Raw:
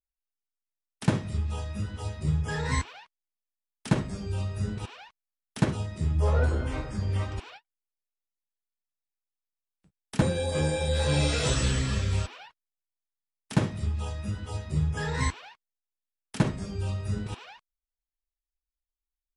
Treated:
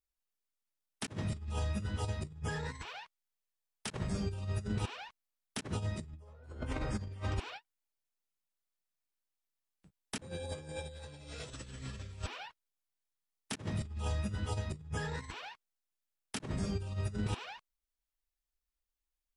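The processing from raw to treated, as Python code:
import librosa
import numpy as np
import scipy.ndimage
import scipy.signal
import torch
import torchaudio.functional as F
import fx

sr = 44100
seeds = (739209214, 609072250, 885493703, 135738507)

y = fx.peak_eq(x, sr, hz=280.0, db=-14.0, octaves=0.33, at=(2.81, 4.11))
y = fx.over_compress(y, sr, threshold_db=-33.0, ratio=-0.5)
y = y * 10.0 ** (-4.5 / 20.0)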